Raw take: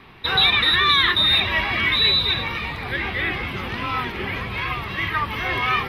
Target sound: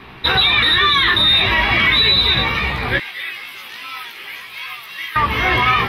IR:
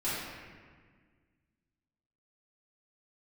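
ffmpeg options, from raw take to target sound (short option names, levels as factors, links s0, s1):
-filter_complex "[0:a]asettb=1/sr,asplit=3[s0][s1][s2];[s0]atrim=end=2.984[s3];[s1]atrim=start=2.98:end=5.16,asetpts=PTS-STARTPTS,afade=t=in:d=0.004:c=qsin,afade=t=out:st=2.176:d=0.004:c=qsin,aderivative[s4];[s2]atrim=start=5.156[s5];[s3][s4]acrossfade=d=0.004:c1=hsin:c2=qsin[s6];[s6][s5]acrossfade=d=0.004:c1=qsin:c2=hsin,flanger=delay=15.5:depth=2.7:speed=0.39,alimiter=level_in=5.96:limit=0.891:release=50:level=0:latency=1,volume=0.596"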